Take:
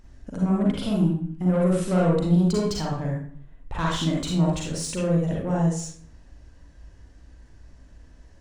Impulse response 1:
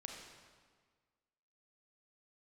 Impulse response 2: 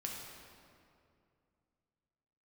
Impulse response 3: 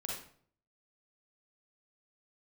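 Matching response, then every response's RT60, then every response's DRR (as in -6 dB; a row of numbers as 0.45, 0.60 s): 3; 1.6, 2.4, 0.55 s; 0.5, -2.0, -3.5 dB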